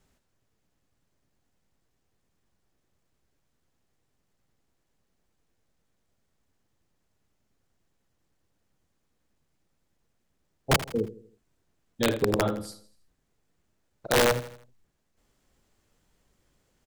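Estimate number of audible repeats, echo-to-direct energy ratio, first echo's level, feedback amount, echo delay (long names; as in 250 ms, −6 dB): 3, −14.0 dB, −15.0 dB, 44%, 81 ms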